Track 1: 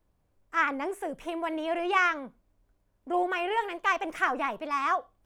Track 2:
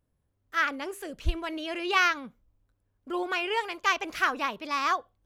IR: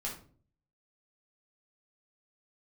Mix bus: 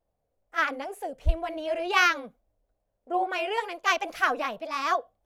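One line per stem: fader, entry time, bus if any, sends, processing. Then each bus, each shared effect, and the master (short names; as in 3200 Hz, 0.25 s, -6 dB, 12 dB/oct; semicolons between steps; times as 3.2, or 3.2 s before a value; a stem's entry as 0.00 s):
-9.5 dB, 0.00 s, no send, band shelf 600 Hz +11 dB 1 oct; wow and flutter 83 cents
-2.0 dB, 0.00 s, no send, bell 11000 Hz +3 dB 0.59 oct; three-band expander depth 70%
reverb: off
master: dry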